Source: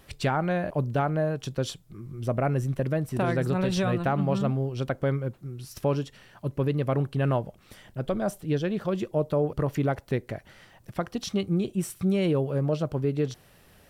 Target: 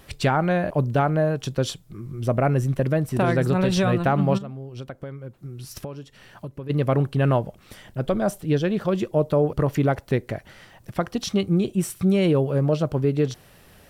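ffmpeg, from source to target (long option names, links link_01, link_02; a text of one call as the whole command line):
ffmpeg -i in.wav -filter_complex "[0:a]asplit=3[link_01][link_02][link_03];[link_01]afade=type=out:start_time=4.37:duration=0.02[link_04];[link_02]acompressor=threshold=-37dB:ratio=10,afade=type=in:start_time=4.37:duration=0.02,afade=type=out:start_time=6.69:duration=0.02[link_05];[link_03]afade=type=in:start_time=6.69:duration=0.02[link_06];[link_04][link_05][link_06]amix=inputs=3:normalize=0,volume=5dB" out.wav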